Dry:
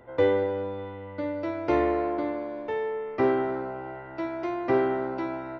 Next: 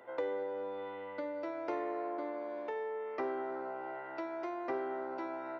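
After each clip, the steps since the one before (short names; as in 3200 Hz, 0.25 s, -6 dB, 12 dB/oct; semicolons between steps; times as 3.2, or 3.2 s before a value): Bessel high-pass 490 Hz, order 2; dynamic EQ 3200 Hz, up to -7 dB, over -50 dBFS, Q 0.84; compressor 2.5:1, threshold -38 dBFS, peak gain reduction 11.5 dB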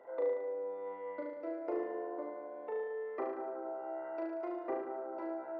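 formant sharpening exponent 1.5; on a send: flutter echo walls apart 6.3 m, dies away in 0.96 s; on the sum: gain -1.5 dB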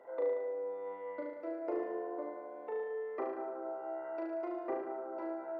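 reverb RT60 0.40 s, pre-delay 95 ms, DRR 15 dB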